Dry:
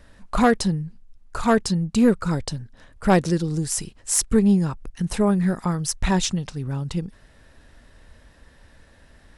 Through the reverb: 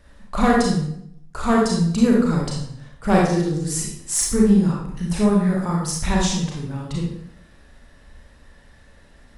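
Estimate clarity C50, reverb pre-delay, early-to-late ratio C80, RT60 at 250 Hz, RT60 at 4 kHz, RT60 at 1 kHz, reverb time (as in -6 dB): 0.5 dB, 30 ms, 5.0 dB, 0.75 s, 0.55 s, 0.65 s, 0.70 s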